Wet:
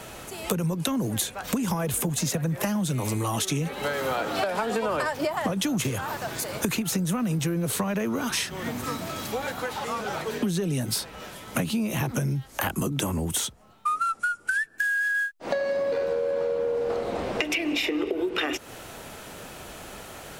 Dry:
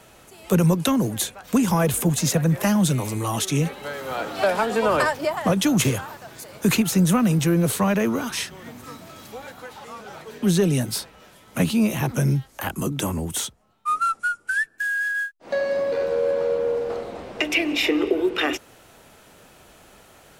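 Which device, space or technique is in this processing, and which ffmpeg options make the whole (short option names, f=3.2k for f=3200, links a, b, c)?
serial compression, leveller first: -af "acompressor=threshold=-21dB:ratio=6,acompressor=threshold=-34dB:ratio=5,volume=9dB"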